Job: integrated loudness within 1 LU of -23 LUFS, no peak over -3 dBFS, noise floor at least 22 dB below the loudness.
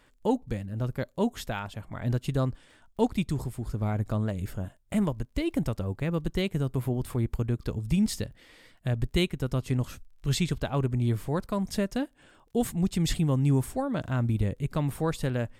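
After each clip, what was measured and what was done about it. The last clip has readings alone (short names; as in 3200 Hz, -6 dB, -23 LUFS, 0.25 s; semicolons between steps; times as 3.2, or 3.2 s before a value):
ticks 23/s; loudness -30.0 LUFS; peak -11.5 dBFS; loudness target -23.0 LUFS
-> de-click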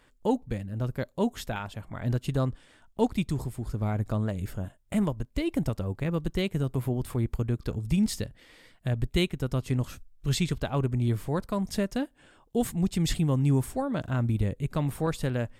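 ticks 0/s; loudness -30.0 LUFS; peak -11.5 dBFS; loudness target -23.0 LUFS
-> gain +7 dB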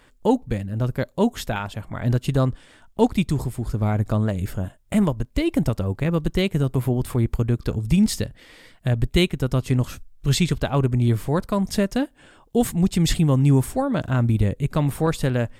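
loudness -23.0 LUFS; peak -4.5 dBFS; noise floor -55 dBFS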